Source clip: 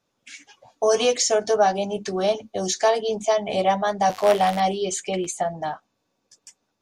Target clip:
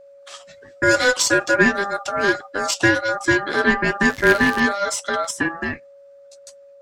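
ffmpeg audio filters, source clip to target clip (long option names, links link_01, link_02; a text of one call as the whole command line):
ffmpeg -i in.wav -af "aeval=exprs='0.422*(cos(1*acos(clip(val(0)/0.422,-1,1)))-cos(1*PI/2))+0.0188*(cos(6*acos(clip(val(0)/0.422,-1,1)))-cos(6*PI/2))':channel_layout=same,aeval=exprs='val(0)*sin(2*PI*1000*n/s)':channel_layout=same,aeval=exprs='val(0)+0.00355*sin(2*PI*560*n/s)':channel_layout=same,volume=5.5dB" out.wav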